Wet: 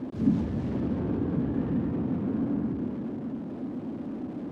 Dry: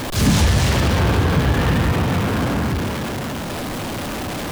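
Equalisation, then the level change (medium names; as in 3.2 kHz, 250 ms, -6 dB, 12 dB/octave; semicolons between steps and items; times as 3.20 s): band-pass filter 260 Hz, Q 2.5; -2.5 dB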